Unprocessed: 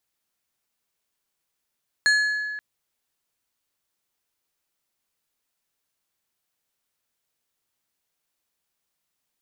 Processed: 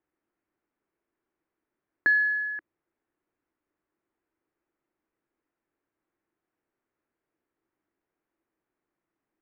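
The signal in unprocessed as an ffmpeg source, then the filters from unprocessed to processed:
-f lavfi -i "aevalsrc='0.178*pow(10,-3*t/1.97)*sin(2*PI*1700*t)+0.0794*pow(10,-3*t/1.037)*sin(2*PI*4250*t)+0.0355*pow(10,-3*t/0.746)*sin(2*PI*6800*t)+0.0158*pow(10,-3*t/0.639)*sin(2*PI*8500*t)+0.00708*pow(10,-3*t/0.531)*sin(2*PI*11050*t)':d=0.53:s=44100"
-af "lowpass=f=2k:w=0.5412,lowpass=f=2k:w=1.3066,equalizer=f=330:w=2.2:g=14"

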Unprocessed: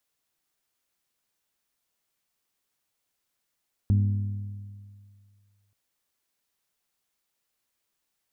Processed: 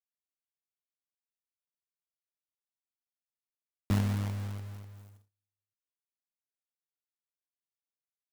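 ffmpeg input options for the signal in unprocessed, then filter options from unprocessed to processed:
-f lavfi -i "aevalsrc='0.141*pow(10,-3*t/2.1)*sin(2*PI*101*t)+0.0501*pow(10,-3*t/1.706)*sin(2*PI*202*t)+0.0178*pow(10,-3*t/1.615)*sin(2*PI*242.4*t)+0.00631*pow(10,-3*t/1.51)*sin(2*PI*303*t)+0.00224*pow(10,-3*t/1.385)*sin(2*PI*404*t)':d=1.83:s=44100"
-filter_complex "[0:a]agate=range=-31dB:threshold=-56dB:ratio=16:detection=peak,acrossover=split=120[a][b];[a]acompressor=threshold=-38dB:ratio=6[c];[c][b]amix=inputs=2:normalize=0,acrusher=bits=2:mode=log:mix=0:aa=0.000001"

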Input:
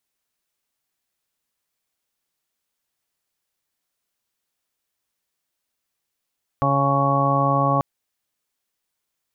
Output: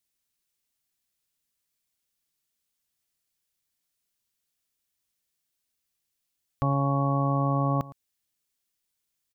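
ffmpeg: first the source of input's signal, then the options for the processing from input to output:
-f lavfi -i "aevalsrc='0.0794*sin(2*PI*139*t)+0.0501*sin(2*PI*278*t)+0.0178*sin(2*PI*417*t)+0.0596*sin(2*PI*556*t)+0.0473*sin(2*PI*695*t)+0.0531*sin(2*PI*834*t)+0.0133*sin(2*PI*973*t)+0.0944*sin(2*PI*1112*t)':d=1.19:s=44100"
-af "equalizer=f=820:w=0.43:g=-9,aecho=1:1:112:0.112"

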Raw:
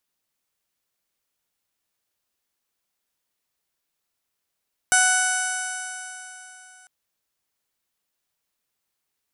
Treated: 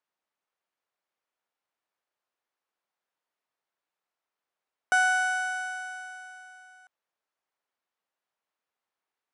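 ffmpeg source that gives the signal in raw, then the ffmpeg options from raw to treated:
-f lavfi -i "aevalsrc='0.0708*pow(10,-3*t/3.34)*sin(2*PI*742.21*t)+0.141*pow(10,-3*t/3.34)*sin(2*PI*1485.69*t)+0.0316*pow(10,-3*t/3.34)*sin(2*PI*2231.7*t)+0.0355*pow(10,-3*t/3.34)*sin(2*PI*2981.5*t)+0.0178*pow(10,-3*t/3.34)*sin(2*PI*3736.34*t)+0.0133*pow(10,-3*t/3.34)*sin(2*PI*4497.45*t)+0.0251*pow(10,-3*t/3.34)*sin(2*PI*5266.03*t)+0.0631*pow(10,-3*t/3.34)*sin(2*PI*6043.3*t)+0.0178*pow(10,-3*t/3.34)*sin(2*PI*6830.42*t)+0.0794*pow(10,-3*t/3.34)*sin(2*PI*7628.54*t)+0.0299*pow(10,-3*t/3.34)*sin(2*PI*8438.77*t)+0.0668*pow(10,-3*t/3.34)*sin(2*PI*9262.21*t)+0.0168*pow(10,-3*t/3.34)*sin(2*PI*10099.92*t)+0.0398*pow(10,-3*t/3.34)*sin(2*PI*10952.91*t)':d=1.95:s=44100"
-af "bandpass=f=880:t=q:w=0.74:csg=0"

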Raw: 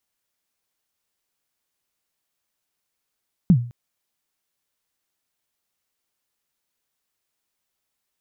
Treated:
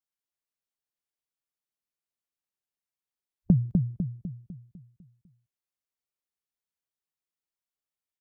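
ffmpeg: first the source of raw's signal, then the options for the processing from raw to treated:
-f lavfi -i "aevalsrc='0.447*pow(10,-3*t/0.41)*sin(2*PI*(200*0.073/log(120/200)*(exp(log(120/200)*min(t,0.073)/0.073)-1)+120*max(t-0.073,0)))':d=0.21:s=44100"
-filter_complex "[0:a]afwtdn=0.0141,acompressor=threshold=-16dB:ratio=6,asplit=2[a][b];[b]adelay=250,lowpass=f=830:p=1,volume=-3.5dB,asplit=2[c][d];[d]adelay=250,lowpass=f=830:p=1,volume=0.5,asplit=2[e][f];[f]adelay=250,lowpass=f=830:p=1,volume=0.5,asplit=2[g][h];[h]adelay=250,lowpass=f=830:p=1,volume=0.5,asplit=2[i][j];[j]adelay=250,lowpass=f=830:p=1,volume=0.5,asplit=2[k][l];[l]adelay=250,lowpass=f=830:p=1,volume=0.5,asplit=2[m][n];[n]adelay=250,lowpass=f=830:p=1,volume=0.5[o];[a][c][e][g][i][k][m][o]amix=inputs=8:normalize=0"

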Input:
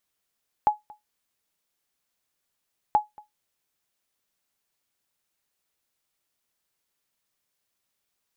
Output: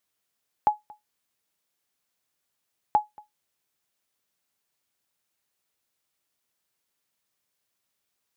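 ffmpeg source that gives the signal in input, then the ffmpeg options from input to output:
-f lavfi -i "aevalsrc='0.282*(sin(2*PI*843*mod(t,2.28))*exp(-6.91*mod(t,2.28)/0.16)+0.0531*sin(2*PI*843*max(mod(t,2.28)-0.23,0))*exp(-6.91*max(mod(t,2.28)-0.23,0)/0.16))':d=4.56:s=44100"
-af "highpass=59"

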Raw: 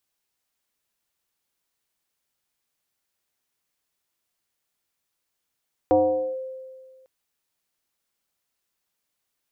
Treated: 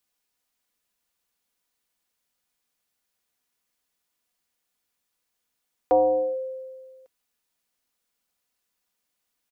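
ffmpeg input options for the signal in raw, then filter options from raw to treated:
-f lavfi -i "aevalsrc='0.224*pow(10,-3*t/1.77)*sin(2*PI*522*t+1*clip(1-t/0.46,0,1)*sin(2*PI*0.41*522*t))':d=1.15:s=44100"
-filter_complex "[0:a]aecho=1:1:4.1:0.35,acrossover=split=400[a][b];[a]alimiter=level_in=4.5dB:limit=-24dB:level=0:latency=1,volume=-4.5dB[c];[c][b]amix=inputs=2:normalize=0"

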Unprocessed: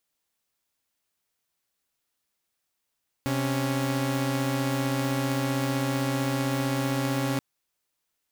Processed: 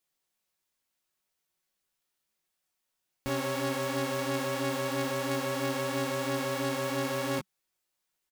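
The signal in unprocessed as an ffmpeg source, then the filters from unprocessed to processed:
-f lavfi -i "aevalsrc='0.0562*((2*mod(130.81*t,1)-1)+(2*mod(277.18*t,1)-1))':d=4.13:s=44100"
-af "equalizer=f=190:w=6.5:g=-4,aecho=1:1:5.4:0.4,flanger=delay=18:depth=2:speed=3"

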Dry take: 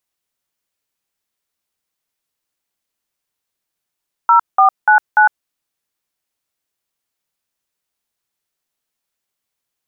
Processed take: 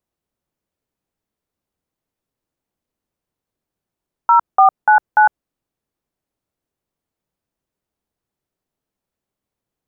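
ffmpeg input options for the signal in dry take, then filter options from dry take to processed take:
-f lavfi -i "aevalsrc='0.355*clip(min(mod(t,0.293),0.106-mod(t,0.293))/0.002,0,1)*(eq(floor(t/0.293),0)*(sin(2*PI*941*mod(t,0.293))+sin(2*PI*1336*mod(t,0.293)))+eq(floor(t/0.293),1)*(sin(2*PI*770*mod(t,0.293))+sin(2*PI*1209*mod(t,0.293)))+eq(floor(t/0.293),2)*(sin(2*PI*852*mod(t,0.293))+sin(2*PI*1477*mod(t,0.293)))+eq(floor(t/0.293),3)*(sin(2*PI*852*mod(t,0.293))+sin(2*PI*1477*mod(t,0.293))))':d=1.172:s=44100"
-af "tiltshelf=f=970:g=9.5"

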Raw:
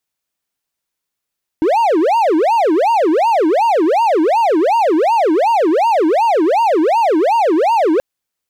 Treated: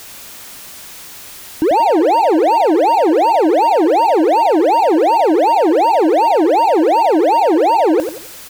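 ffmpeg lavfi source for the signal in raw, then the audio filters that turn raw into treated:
-f lavfi -i "aevalsrc='0.398*(1-4*abs(mod((621*t-315/(2*PI*2.7)*sin(2*PI*2.7*t))+0.25,1)-0.5))':d=6.38:s=44100"
-filter_complex "[0:a]aeval=exprs='val(0)+0.5*0.0376*sgn(val(0))':c=same,asplit=2[a][b];[b]aecho=0:1:90|180|270|360:0.376|0.12|0.0385|0.0123[c];[a][c]amix=inputs=2:normalize=0"

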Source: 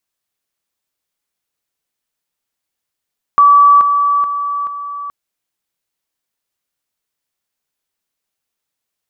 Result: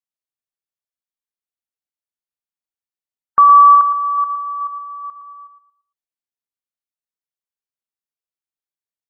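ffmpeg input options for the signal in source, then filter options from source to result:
-f lavfi -i "aevalsrc='pow(10,(-4-6*floor(t/0.43))/20)*sin(2*PI*1150*t)':d=1.72:s=44100"
-filter_complex "[0:a]asplit=2[a][b];[b]aecho=0:1:58|370:0.188|0.224[c];[a][c]amix=inputs=2:normalize=0,afftdn=nr=19:nf=-26,asplit=2[d][e];[e]adelay=114,lowpass=f=1.5k:p=1,volume=-6dB,asplit=2[f][g];[g]adelay=114,lowpass=f=1.5k:p=1,volume=0.36,asplit=2[h][i];[i]adelay=114,lowpass=f=1.5k:p=1,volume=0.36,asplit=2[j][k];[k]adelay=114,lowpass=f=1.5k:p=1,volume=0.36[l];[f][h][j][l]amix=inputs=4:normalize=0[m];[d][m]amix=inputs=2:normalize=0"

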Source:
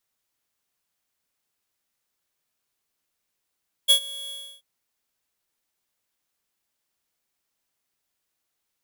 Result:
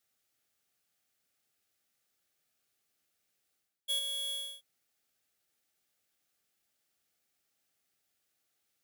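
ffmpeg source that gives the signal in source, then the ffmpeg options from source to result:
-f lavfi -i "aevalsrc='0.2*(2*lt(mod(3350*t,1),0.5)-1)':d=0.735:s=44100,afade=t=in:d=0.025,afade=t=out:st=0.025:d=0.088:silence=0.0841,afade=t=out:st=0.42:d=0.315"
-af "highpass=58,areverse,acompressor=threshold=-35dB:ratio=6,areverse,asuperstop=centerf=1000:order=4:qfactor=4.4"

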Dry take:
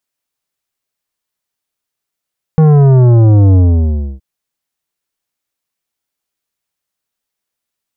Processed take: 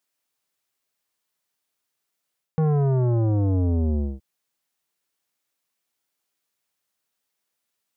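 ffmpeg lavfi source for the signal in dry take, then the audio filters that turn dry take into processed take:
-f lavfi -i "aevalsrc='0.562*clip((1.62-t)/0.65,0,1)*tanh(3.76*sin(2*PI*160*1.62/log(65/160)*(exp(log(65/160)*t/1.62)-1)))/tanh(3.76)':d=1.62:s=44100"
-af "highpass=f=150:p=1,areverse,acompressor=threshold=-18dB:ratio=6,areverse"

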